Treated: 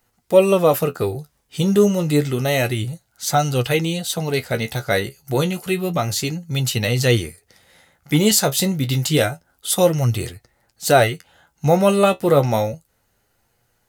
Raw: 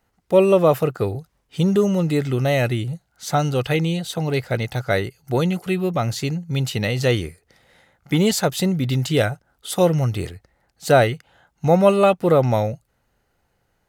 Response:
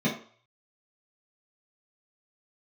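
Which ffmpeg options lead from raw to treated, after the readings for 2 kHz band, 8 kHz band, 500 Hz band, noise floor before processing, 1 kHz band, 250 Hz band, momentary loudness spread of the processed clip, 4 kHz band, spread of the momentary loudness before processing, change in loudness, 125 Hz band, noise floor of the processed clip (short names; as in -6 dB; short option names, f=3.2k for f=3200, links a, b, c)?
+2.0 dB, +8.5 dB, +0.5 dB, -69 dBFS, +1.0 dB, +0.5 dB, 11 LU, +4.5 dB, 12 LU, +1.0 dB, 0.0 dB, -67 dBFS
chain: -af "highshelf=f=4.7k:g=11,flanger=delay=8.2:depth=6.4:regen=48:speed=0.29:shape=sinusoidal,volume=4.5dB"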